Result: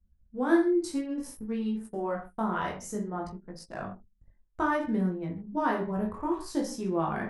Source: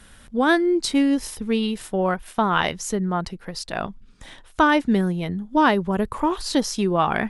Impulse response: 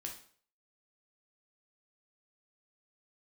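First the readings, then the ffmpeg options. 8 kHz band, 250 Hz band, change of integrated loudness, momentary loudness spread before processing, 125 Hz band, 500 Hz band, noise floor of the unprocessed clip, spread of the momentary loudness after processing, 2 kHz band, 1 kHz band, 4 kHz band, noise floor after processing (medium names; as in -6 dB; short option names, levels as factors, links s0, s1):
-12.0 dB, -7.5 dB, -8.5 dB, 11 LU, -8.5 dB, -8.0 dB, -49 dBFS, 14 LU, -12.0 dB, -10.0 dB, -18.5 dB, -66 dBFS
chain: -filter_complex "[0:a]equalizer=f=3300:t=o:w=1.3:g=-12.5[s0];[1:a]atrim=start_sample=2205,afade=t=out:st=0.24:d=0.01,atrim=end_sample=11025[s1];[s0][s1]afir=irnorm=-1:irlink=0,anlmdn=0.631,flanger=delay=17:depth=5.6:speed=0.59,volume=0.708"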